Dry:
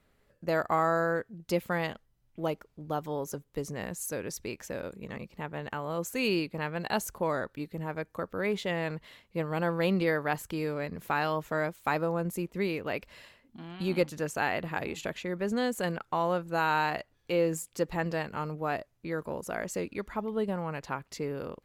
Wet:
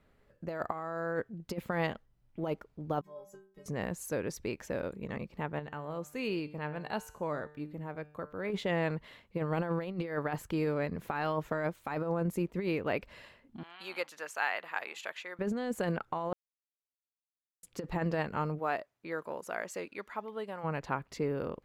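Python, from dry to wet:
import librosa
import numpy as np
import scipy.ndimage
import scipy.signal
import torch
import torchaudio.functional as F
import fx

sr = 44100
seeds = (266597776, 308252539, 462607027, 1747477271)

y = fx.stiff_resonator(x, sr, f0_hz=190.0, decay_s=0.52, stiffness=0.008, at=(3.01, 3.66))
y = fx.comb_fb(y, sr, f0_hz=150.0, decay_s=0.65, harmonics='all', damping=0.0, mix_pct=60, at=(5.59, 8.5))
y = fx.highpass(y, sr, hz=1000.0, slope=12, at=(13.63, 15.39))
y = fx.highpass(y, sr, hz=fx.line((18.58, 530.0), (20.63, 1400.0)), slope=6, at=(18.58, 20.63), fade=0.02)
y = fx.edit(y, sr, fx.silence(start_s=16.33, length_s=1.3), tone=tone)
y = fx.high_shelf(y, sr, hz=3700.0, db=-10.0)
y = fx.over_compress(y, sr, threshold_db=-31.0, ratio=-0.5)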